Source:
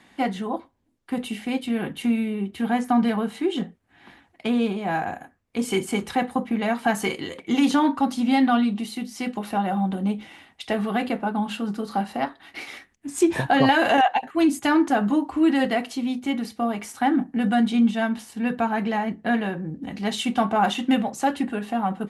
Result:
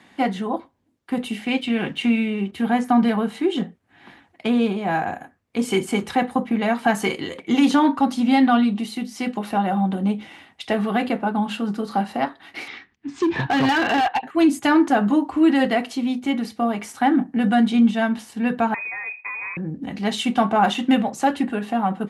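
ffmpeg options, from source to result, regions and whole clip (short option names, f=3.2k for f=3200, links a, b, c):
-filter_complex "[0:a]asettb=1/sr,asplit=3[a][b][c];[a]atrim=end=1.454[d];[b]atrim=start=1.45:end=2.52,asetpts=PTS-STARTPTS,afade=t=in:d=0.004:c=qsin,afade=t=out:st=1.066:d=0.004:c=qsin,lowpass=f=9.1k:w=0.5412,lowpass=f=9.1k:w=1.3066,equalizer=f=2.7k:w=1.4:g=7.5,aeval=exprs='sgn(val(0))*max(abs(val(0))-0.0015,0)':c=same[e];[c]atrim=start=2.516[f];[d][e]acrossfade=d=0.004:c1=hsin:c2=qsin[g];[g][f]acrossfade=d=0.004:c1=qsin:c2=hsin,asettb=1/sr,asplit=3[h][i][j];[h]atrim=end=12.684[k];[i]atrim=start=12.68:end=14.26,asetpts=PTS-STARTPTS,afade=t=in:d=0.004:c=qsin,afade=t=out:st=1.576:d=0.004:c=qsin,lowpass=f=4.9k:w=0.5412,lowpass=f=4.9k:w=1.3066,equalizer=f=590:t=o:w=0.34:g=-12.5,asoftclip=type=hard:threshold=-18.5dB[l];[j]atrim=start=14.256[m];[k][l]acrossfade=d=0.004:c1=hsin:c2=qsin[n];[n][m]acrossfade=d=0.004:c1=qsin:c2=hsin,asettb=1/sr,asplit=3[o][p][q];[o]atrim=end=18.744[r];[p]atrim=start=18.74:end=19.57,asetpts=PTS-STARTPTS,afade=t=in:d=0.004:c=qsin,afade=t=out:st=0.826:d=0.004:c=qsin,acompressor=threshold=-29dB:ratio=16:attack=3.2:release=140:knee=1:detection=peak,lowpass=f=2.3k:t=q:w=0.5098,lowpass=f=2.3k:t=q:w=0.6013,lowpass=f=2.3k:t=q:w=0.9,lowpass=f=2.3k:t=q:w=2.563,afreqshift=-2700[s];[q]atrim=start=19.566[t];[r][s]acrossfade=d=0.004:c1=hsin:c2=qsin[u];[u][t]acrossfade=d=0.004:c1=qsin:c2=hsin,highpass=71,highshelf=f=7.1k:g=-5,volume=3dB"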